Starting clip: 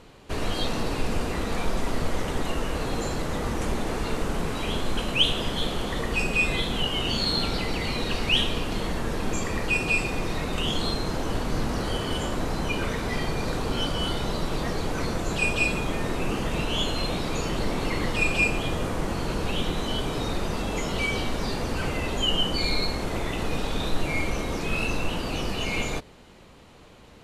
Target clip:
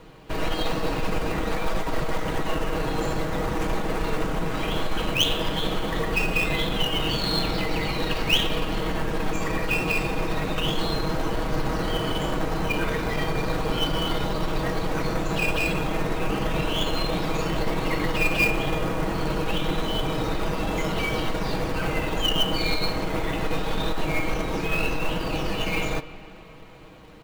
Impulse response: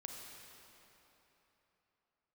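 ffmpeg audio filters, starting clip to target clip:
-filter_complex "[0:a]equalizer=f=12k:t=o:w=1.4:g=-9.5,aecho=1:1:6.3:0.52,acrossover=split=430|6000[a][b][c];[a]asoftclip=type=tanh:threshold=-22dB[d];[b]acrusher=bits=3:mode=log:mix=0:aa=0.000001[e];[d][e][c]amix=inputs=3:normalize=0,aeval=exprs='0.422*(cos(1*acos(clip(val(0)/0.422,-1,1)))-cos(1*PI/2))+0.15*(cos(2*acos(clip(val(0)/0.422,-1,1)))-cos(2*PI/2))':c=same,asplit=2[f][g];[1:a]atrim=start_sample=2205,lowpass=3.5k[h];[g][h]afir=irnorm=-1:irlink=0,volume=-5.5dB[i];[f][i]amix=inputs=2:normalize=0"

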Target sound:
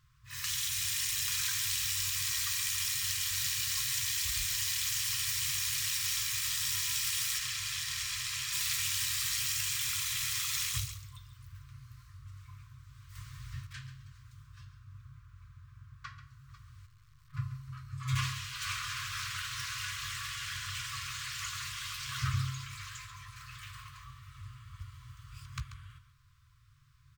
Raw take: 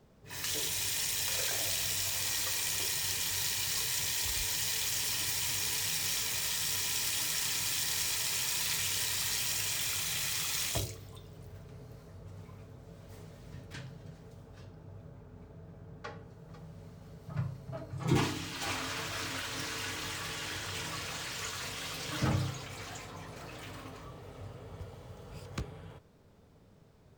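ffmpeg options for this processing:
-filter_complex "[0:a]asettb=1/sr,asplit=3[a][b][c];[a]atrim=end=7.384[d];[b]atrim=start=7.38:end=8.53,asetpts=PTS-STARTPTS,afade=t=in:d=0.004:c=qsin,afade=t=out:st=1.146:d=0.004:c=qsin,highshelf=f=7.6k:g=-10[e];[c]atrim=start=8.526[f];[d][e]acrossfade=d=0.004:c1=hsin:c2=qsin[g];[g][f]acrossfade=d=0.004:c1=qsin:c2=hsin,asplit=2[h][i];[i]aecho=0:1:137:0.251[j];[h][j]amix=inputs=2:normalize=0,asettb=1/sr,asplit=3[k][l][m];[k]atrim=end=13.154[n];[l]atrim=start=13.15:end=13.67,asetpts=PTS-STARTPTS,afade=t=in:d=0.004:c=qsin,afade=t=out:st=0.516:d=0.004:c=qsin,acontrast=68[o];[m]atrim=start=13.666[p];[n][o]acrossfade=d=0.004:c1=hsin:c2=qsin[q];[q][p]acrossfade=d=0.004:c1=qsin:c2=hsin,asettb=1/sr,asplit=3[r][s][t];[r]atrim=end=16.864[u];[s]atrim=start=16.86:end=17.34,asetpts=PTS-STARTPTS,afade=t=in:d=0.004:c=qsin,afade=t=out:st=0.476:d=0.004:c=qsin,aeval=exprs='(tanh(631*val(0)+0.75)-tanh(0.75))/631':c=same[v];[t]atrim=start=17.336[w];[u][v]acrossfade=d=0.004:c1=hsin:c2=qsin[x];[x][w]acrossfade=d=0.004:c1=qsin:c2=hsin,afftfilt=real='re*(1-between(b*sr/4096,150,1000))':imag='im*(1-between(b*sr/4096,150,1000))':win_size=4096:overlap=0.75"

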